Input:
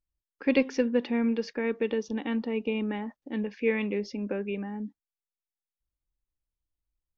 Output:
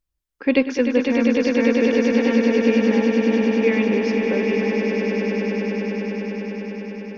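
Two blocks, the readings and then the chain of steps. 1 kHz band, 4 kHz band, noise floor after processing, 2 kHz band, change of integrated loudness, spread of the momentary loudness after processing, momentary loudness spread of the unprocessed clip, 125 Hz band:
+11.0 dB, +11.0 dB, -76 dBFS, +11.5 dB, +10.0 dB, 10 LU, 9 LU, no reading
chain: echo with a slow build-up 100 ms, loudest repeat 8, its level -7.5 dB; trim +6 dB

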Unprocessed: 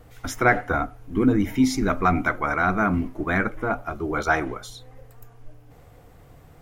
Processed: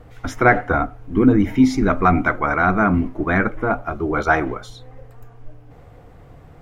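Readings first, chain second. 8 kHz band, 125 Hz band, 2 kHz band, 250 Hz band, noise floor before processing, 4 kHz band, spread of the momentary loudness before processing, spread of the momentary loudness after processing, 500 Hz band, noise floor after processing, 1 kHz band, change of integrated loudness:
no reading, +5.5 dB, +4.0 dB, +5.5 dB, -50 dBFS, -1.0 dB, 8 LU, 8 LU, +5.5 dB, -45 dBFS, +4.5 dB, +5.0 dB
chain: low-pass 2.3 kHz 6 dB/octave; trim +5.5 dB

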